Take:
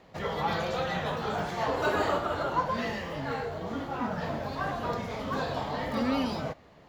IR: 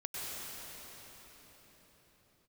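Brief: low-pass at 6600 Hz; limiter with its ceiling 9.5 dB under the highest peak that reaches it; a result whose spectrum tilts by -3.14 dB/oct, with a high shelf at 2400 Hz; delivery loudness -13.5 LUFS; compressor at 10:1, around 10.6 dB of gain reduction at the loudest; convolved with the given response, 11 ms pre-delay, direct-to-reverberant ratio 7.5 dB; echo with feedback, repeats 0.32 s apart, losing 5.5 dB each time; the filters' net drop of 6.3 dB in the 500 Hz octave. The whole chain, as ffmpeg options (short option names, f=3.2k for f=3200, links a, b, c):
-filter_complex "[0:a]lowpass=6.6k,equalizer=f=500:t=o:g=-8.5,highshelf=f=2.4k:g=7.5,acompressor=threshold=-35dB:ratio=10,alimiter=level_in=11dB:limit=-24dB:level=0:latency=1,volume=-11dB,aecho=1:1:320|640|960|1280|1600|1920|2240:0.531|0.281|0.149|0.079|0.0419|0.0222|0.0118,asplit=2[a][b];[1:a]atrim=start_sample=2205,adelay=11[c];[b][c]afir=irnorm=-1:irlink=0,volume=-10.5dB[d];[a][d]amix=inputs=2:normalize=0,volume=27.5dB"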